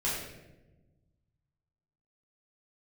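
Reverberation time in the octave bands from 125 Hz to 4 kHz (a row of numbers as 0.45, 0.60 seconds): 2.2, 1.7, 1.3, 0.85, 0.85, 0.65 seconds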